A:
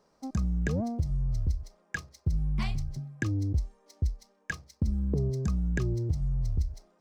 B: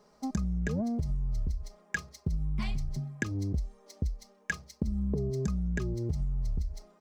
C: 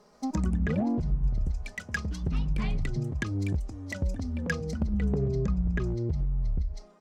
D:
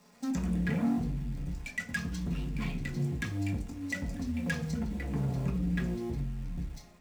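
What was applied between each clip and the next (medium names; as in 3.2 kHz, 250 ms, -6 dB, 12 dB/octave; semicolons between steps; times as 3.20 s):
comb 4.8 ms, depth 51%; compression, threshold -31 dBFS, peak gain reduction 8.5 dB; trim +3.5 dB
hard clipper -25 dBFS, distortion -19 dB; low-pass that closes with the level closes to 3 kHz, closed at -27 dBFS; ever faster or slower copies 143 ms, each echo +3 st, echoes 2, each echo -6 dB; trim +3 dB
in parallel at -6 dB: companded quantiser 4-bit; on the sum: hard clipper -24.5 dBFS, distortion -10 dB; reverberation RT60 0.45 s, pre-delay 3 ms, DRR -1 dB; trim -4.5 dB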